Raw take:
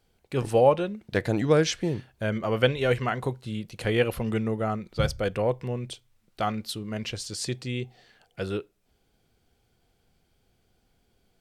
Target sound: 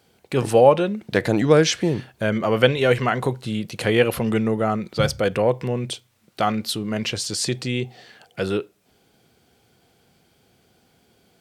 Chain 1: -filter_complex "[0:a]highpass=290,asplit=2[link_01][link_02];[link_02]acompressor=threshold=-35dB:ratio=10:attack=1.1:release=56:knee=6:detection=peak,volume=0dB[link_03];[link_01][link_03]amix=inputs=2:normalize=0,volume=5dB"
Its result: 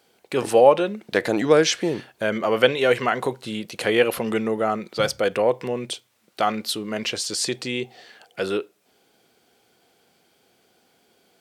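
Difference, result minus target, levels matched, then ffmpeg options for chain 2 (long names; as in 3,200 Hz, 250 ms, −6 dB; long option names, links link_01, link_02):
125 Hz band −9.5 dB
-filter_complex "[0:a]highpass=120,asplit=2[link_01][link_02];[link_02]acompressor=threshold=-35dB:ratio=10:attack=1.1:release=56:knee=6:detection=peak,volume=0dB[link_03];[link_01][link_03]amix=inputs=2:normalize=0,volume=5dB"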